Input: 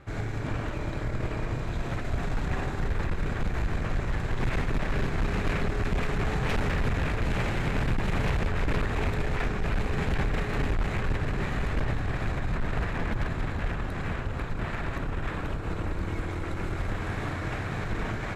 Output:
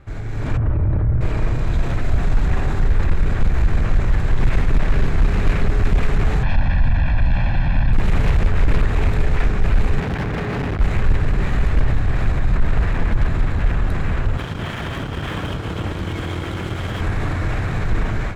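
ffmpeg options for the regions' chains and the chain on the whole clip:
-filter_complex "[0:a]asettb=1/sr,asplit=3[s0][s1][s2];[s0]atrim=end=0.574[s3];[s1]atrim=start=0.57:end=1.21,asetpts=PTS-STARTPTS,afade=t=in:d=0.004:c=qsin,afade=t=out:st=0.636:d=0.004:c=qsin,lowpass=1400,equalizer=f=86:t=o:w=1.8:g=13.5[s4];[s2]atrim=start=1.206[s5];[s3][s4]acrossfade=d=0.004:c1=hsin:c2=qsin[s6];[s6][s5]acrossfade=d=0.004:c1=qsin:c2=hsin,asettb=1/sr,asplit=3[s7][s8][s9];[s7]atrim=end=6.434[s10];[s8]atrim=start=6.43:end=7.93,asetpts=PTS-STARTPTS,afade=t=in:d=0.004:c=qsin,afade=t=out:st=1.496:d=0.004:c=qsin,lowpass=f=4500:w=0.5412,lowpass=f=4500:w=1.3066,aecho=1:1:1.2:0.97,atrim=end_sample=66150[s11];[s9]atrim=start=7.926[s12];[s10][s11]acrossfade=d=0.004:c1=hsin:c2=qsin[s13];[s13][s12]acrossfade=d=0.004:c1=qsin:c2=hsin,asettb=1/sr,asplit=3[s14][s15][s16];[s14]atrim=end=10.004[s17];[s15]atrim=start=10:end=10.8,asetpts=PTS-STARTPTS,afade=t=in:d=0.004:c=qsin,afade=t=out:st=0.796:d=0.004:c=qsin,highpass=120,aemphasis=mode=reproduction:type=75kf,volume=33.5,asoftclip=hard,volume=0.0299[s18];[s16]atrim=start=10.796[s19];[s17][s18]acrossfade=d=0.004:c1=hsin:c2=qsin[s20];[s20][s19]acrossfade=d=0.004:c1=qsin:c2=hsin,asettb=1/sr,asplit=3[s21][s22][s23];[s21]atrim=end=14.374[s24];[s22]atrim=start=14.37:end=17.01,asetpts=PTS-STARTPTS,afade=t=in:d=0.004:c=qsin,afade=t=out:st=2.636:d=0.004:c=qsin,highpass=100,equalizer=f=3200:t=o:w=0.22:g=14,aeval=exprs='sgn(val(0))*max(abs(val(0))-0.00447,0)':c=same[s25];[s23]atrim=start=17.006[s26];[s24][s25]acrossfade=d=0.004:c1=hsin:c2=qsin[s27];[s27][s26]acrossfade=d=0.004:c1=qsin:c2=hsin,alimiter=level_in=1.41:limit=0.0631:level=0:latency=1:release=27,volume=0.708,dynaudnorm=f=250:g=3:m=2.82,lowshelf=f=100:g=11"

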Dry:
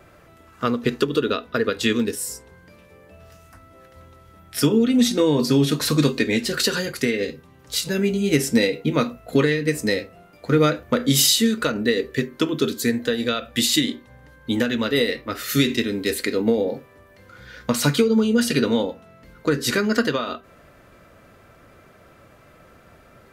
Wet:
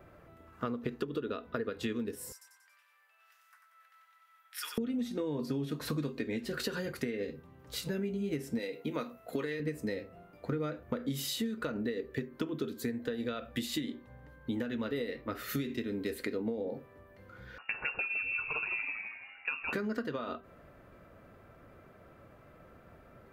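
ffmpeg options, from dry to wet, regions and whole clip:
-filter_complex "[0:a]asettb=1/sr,asplit=3[s0][s1][s2];[s0]atrim=end=2.324[s3];[s1]atrim=start=2.32:end=4.78,asetpts=PTS-STARTPTS,afade=t=in:d=0.004:c=qsin,afade=t=out:st=2.456:d=0.004:c=qsin,highpass=f=1300:w=0.5412,highpass=f=1300:w=1.3066,aecho=1:1:93|186|279|372|465|558:0.531|0.271|0.138|0.0704|0.0359|0.0183,atrim=end_sample=108486[s4];[s2]atrim=start=4.776[s5];[s3][s4]acrossfade=d=0.004:c1=hsin:c2=qsin[s6];[s6][s5]acrossfade=d=0.004:c1=qsin:c2=hsin,asettb=1/sr,asplit=3[s7][s8][s9];[s7]atrim=end=8.594[s10];[s8]atrim=start=8.59:end=9.6,asetpts=PTS-STARTPTS,afade=t=in:d=0.004:c=qsin,afade=t=out:st=1.006:d=0.004:c=qsin,highpass=f=400:p=1,highshelf=f=4500:g=7.5[s11];[s9]atrim=start=9.596[s12];[s10][s11]acrossfade=d=0.004:c1=hsin:c2=qsin[s13];[s13][s12]acrossfade=d=0.004:c1=qsin:c2=hsin,asettb=1/sr,asplit=3[s14][s15][s16];[s14]atrim=end=17.584[s17];[s15]atrim=start=17.58:end=19.73,asetpts=PTS-STARTPTS,afade=t=in:d=0.004:c=qsin,afade=t=out:st=2.146:d=0.004:c=qsin,asplit=6[s18][s19][s20][s21][s22][s23];[s19]adelay=162,afreqshift=87,volume=0.355[s24];[s20]adelay=324,afreqshift=174,volume=0.164[s25];[s21]adelay=486,afreqshift=261,volume=0.075[s26];[s22]adelay=648,afreqshift=348,volume=0.0347[s27];[s23]adelay=810,afreqshift=435,volume=0.0158[s28];[s18][s24][s25][s26][s27][s28]amix=inputs=6:normalize=0,atrim=end_sample=94815,lowpass=f=2500:t=q:w=0.5098,lowpass=f=2500:t=q:w=0.6013,lowpass=f=2500:t=q:w=0.9,lowpass=f=2500:t=q:w=2.563,afreqshift=-2900[s29];[s16]atrim=start=19.726[s30];[s17][s29]acrossfade=d=0.004:c1=hsin:c2=qsin[s31];[s31][s30]acrossfade=d=0.004:c1=qsin:c2=hsin,equalizer=f=6900:w=0.38:g=-12,acompressor=threshold=0.0447:ratio=6,volume=0.562"

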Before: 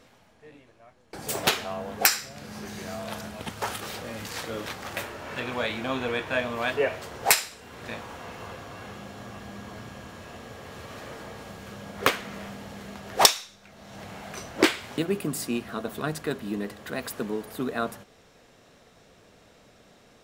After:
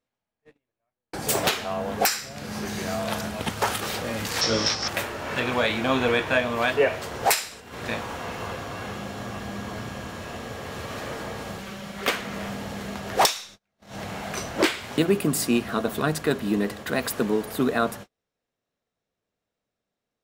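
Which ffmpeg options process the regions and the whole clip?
-filter_complex "[0:a]asettb=1/sr,asplit=3[s0][s1][s2];[s0]atrim=end=4.414[s3];[s1]atrim=start=4.41:end=4.88,asetpts=PTS-STARTPTS,afade=t=in:d=0.004:c=qsin,afade=t=out:st=0.466:d=0.004:c=qsin,lowpass=f=5400:t=q:w=12,asplit=2[s4][s5];[s5]adelay=18,volume=0.708[s6];[s4][s6]amix=inputs=2:normalize=0,atrim=end_sample=20727[s7];[s2]atrim=start=4.876[s8];[s3][s7]acrossfade=d=0.004:c1=hsin:c2=qsin[s9];[s9][s8]acrossfade=d=0.004:c1=qsin:c2=hsin,asettb=1/sr,asplit=3[s10][s11][s12];[s10]atrim=end=11.584[s13];[s11]atrim=start=11.58:end=12.08,asetpts=PTS-STARTPTS,afade=t=in:d=0.004:c=qsin,afade=t=out:st=0.496:d=0.004:c=qsin,acrossover=split=130|1400|4600[s14][s15][s16][s17];[s14]acompressor=threshold=0.00224:ratio=3[s18];[s15]acompressor=threshold=0.00398:ratio=3[s19];[s16]acompressor=threshold=0.00501:ratio=3[s20];[s17]acompressor=threshold=0.00112:ratio=3[s21];[s18][s19][s20][s21]amix=inputs=4:normalize=0,aecho=1:1:5.2:0.56,atrim=end_sample=22050[s22];[s12]atrim=start=12.076[s23];[s13][s22]acrossfade=d=0.004:c1=hsin:c2=qsin[s24];[s24][s23]acrossfade=d=0.004:c1=qsin:c2=hsin,agate=range=0.0158:threshold=0.00562:ratio=16:detection=peak,acontrast=85,alimiter=limit=0.316:level=0:latency=1:release=465"

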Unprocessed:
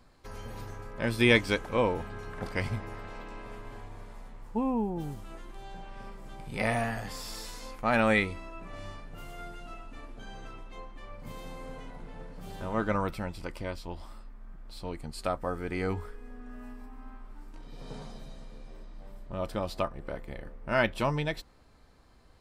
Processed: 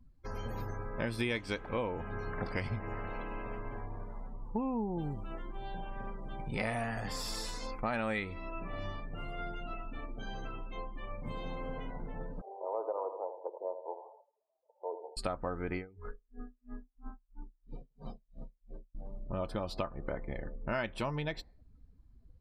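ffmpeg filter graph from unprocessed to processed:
-filter_complex "[0:a]asettb=1/sr,asplit=3[s0][s1][s2];[s0]atrim=end=12.414[s3];[s1]atrim=start=12.41:end=15.17,asetpts=PTS-STARTPTS,afade=t=in:d=0.004:c=qsin,afade=t=out:st=2.756:d=0.004:c=qsin,asuperpass=centerf=630:order=8:qfactor=1.1,aecho=1:1:81|162|243|324|405|486:0.299|0.152|0.0776|0.0396|0.0202|0.0103,atrim=end_sample=121716[s4];[s2]atrim=start=15.166[s5];[s3][s4]acrossfade=d=0.004:c1=hsin:c2=qsin[s6];[s6][s5]acrossfade=d=0.004:c1=qsin:c2=hsin,asettb=1/sr,asplit=3[s7][s8][s9];[s7]atrim=end=15.754[s10];[s8]atrim=start=15.75:end=18.95,asetpts=PTS-STARTPTS,afade=t=in:d=0.004:c=qsin,afade=t=out:st=3.196:d=0.004:c=qsin,highshelf=f=9300:g=-10,aeval=exprs='val(0)*pow(10,-30*(0.5-0.5*cos(2*PI*3*n/s))/20)':c=same[s11];[s9]atrim=start=18.946[s12];[s10][s11]acrossfade=d=0.004:c1=hsin:c2=qsin[s13];[s13][s12]acrossfade=d=0.004:c1=qsin:c2=hsin,afftdn=nr=27:nf=-52,acompressor=threshold=0.0178:ratio=5,volume=1.41"

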